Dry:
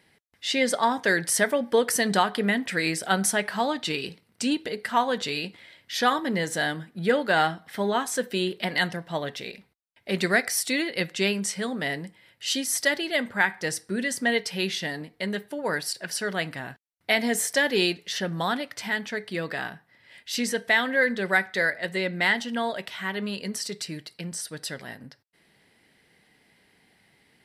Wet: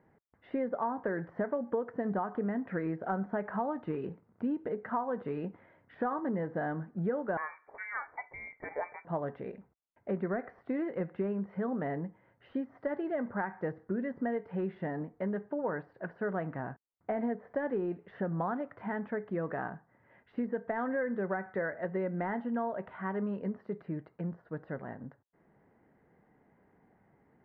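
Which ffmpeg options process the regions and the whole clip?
ffmpeg -i in.wav -filter_complex "[0:a]asettb=1/sr,asplit=3[link_01][link_02][link_03];[link_01]atrim=end=7.374[link_04];[link_02]atrim=start=7.37:end=9.05,asetpts=PTS-STARTPTS,afade=type=in:duration=0.004:curve=qsin,afade=type=out:start_time=1.676:duration=0.004:curve=qsin,equalizer=frequency=1700:width=0.7:gain=-7,lowpass=frequency=2100:width_type=q:width=0.5098,lowpass=frequency=2100:width_type=q:width=0.6013,lowpass=frequency=2100:width_type=q:width=0.9,lowpass=frequency=2100:width_type=q:width=2.563,afreqshift=-2500[link_05];[link_03]atrim=start=9.046[link_06];[link_04][link_05]acrossfade=duration=0.004:curve1=hsin:curve2=qsin[link_07];[link_07][link_06]acrossfade=duration=0.004:curve1=qsin:curve2=hsin,deesser=0.8,lowpass=frequency=1300:width=0.5412,lowpass=frequency=1300:width=1.3066,acompressor=threshold=-30dB:ratio=5" out.wav

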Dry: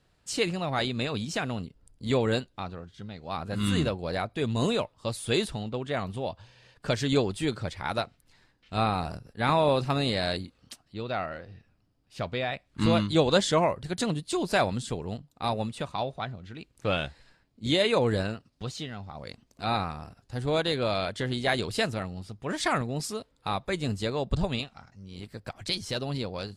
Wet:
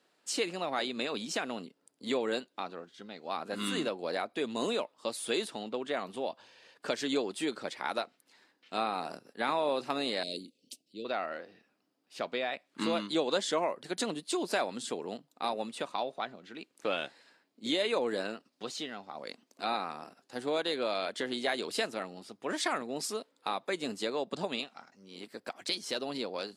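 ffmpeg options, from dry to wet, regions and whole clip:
ffmpeg -i in.wav -filter_complex "[0:a]asettb=1/sr,asplit=3[link_01][link_02][link_03];[link_01]atrim=end=10.234[link_04];[link_02]atrim=start=10.23:end=11.05,asetpts=PTS-STARTPTS,afade=type=in:duration=0.004:curve=qsin,afade=type=out:start_time=0.816:duration=0.004:curve=qsin,asuperstop=centerf=1200:order=8:qfactor=0.67,equalizer=frequency=1200:width_type=o:width=2.3:gain=-11.5[link_05];[link_03]atrim=start=11.046[link_06];[link_04][link_05]acrossfade=duration=0.004:curve1=hsin:curve2=qsin[link_07];[link_07][link_06]acrossfade=duration=0.004:curve1=qsin:curve2=hsin,highpass=frequency=250:width=0.5412,highpass=frequency=250:width=1.3066,acompressor=threshold=-31dB:ratio=2" out.wav

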